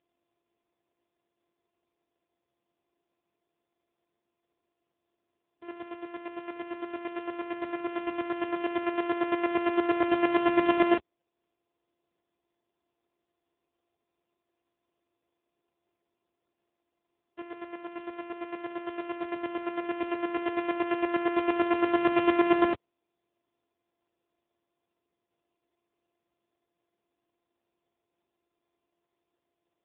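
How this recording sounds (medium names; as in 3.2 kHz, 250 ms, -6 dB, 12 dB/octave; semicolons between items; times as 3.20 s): a buzz of ramps at a fixed pitch in blocks of 128 samples; chopped level 8.8 Hz, depth 65%, duty 25%; AMR-NB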